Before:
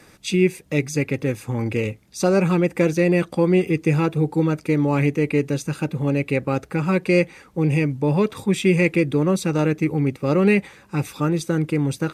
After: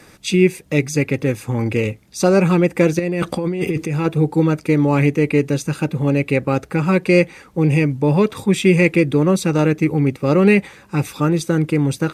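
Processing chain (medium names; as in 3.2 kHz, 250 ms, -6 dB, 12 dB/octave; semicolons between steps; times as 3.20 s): 2.99–4.06 s: compressor with a negative ratio -24 dBFS, ratio -1; trim +4 dB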